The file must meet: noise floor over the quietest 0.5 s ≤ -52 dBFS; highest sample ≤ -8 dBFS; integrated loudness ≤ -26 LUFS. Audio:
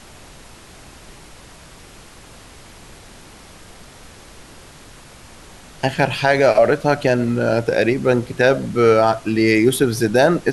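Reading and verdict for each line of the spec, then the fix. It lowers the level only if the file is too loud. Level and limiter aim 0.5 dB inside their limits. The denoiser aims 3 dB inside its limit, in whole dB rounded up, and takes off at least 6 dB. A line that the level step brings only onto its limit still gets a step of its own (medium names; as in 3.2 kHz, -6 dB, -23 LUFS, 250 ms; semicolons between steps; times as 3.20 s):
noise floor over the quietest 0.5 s -42 dBFS: fail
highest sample -4.0 dBFS: fail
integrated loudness -16.5 LUFS: fail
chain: noise reduction 6 dB, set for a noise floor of -42 dBFS; trim -10 dB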